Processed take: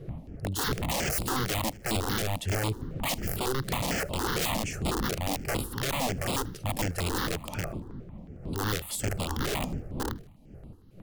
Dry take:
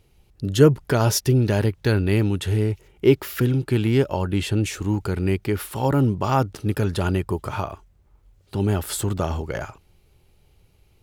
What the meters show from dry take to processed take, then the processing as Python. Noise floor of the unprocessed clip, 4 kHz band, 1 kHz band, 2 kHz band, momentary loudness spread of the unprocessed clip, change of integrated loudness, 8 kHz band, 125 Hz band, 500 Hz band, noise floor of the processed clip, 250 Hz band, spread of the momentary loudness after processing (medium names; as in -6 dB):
-59 dBFS, 0.0 dB, -4.0 dB, -2.0 dB, 9 LU, -8.5 dB, -1.0 dB, -12.0 dB, -11.5 dB, -50 dBFS, -11.0 dB, 9 LU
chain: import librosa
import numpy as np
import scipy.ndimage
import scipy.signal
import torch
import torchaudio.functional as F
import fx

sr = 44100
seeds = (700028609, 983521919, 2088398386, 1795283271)

p1 = fx.dmg_wind(x, sr, seeds[0], corner_hz=210.0, level_db=-25.0)
p2 = (np.mod(10.0 ** (16.5 / 20.0) * p1 + 1.0, 2.0) - 1.0) / 10.0 ** (16.5 / 20.0)
p3 = p2 + fx.echo_feedback(p2, sr, ms=78, feedback_pct=47, wet_db=-23.5, dry=0)
p4 = fx.phaser_held(p3, sr, hz=11.0, low_hz=250.0, high_hz=6000.0)
y = p4 * 10.0 ** (-5.0 / 20.0)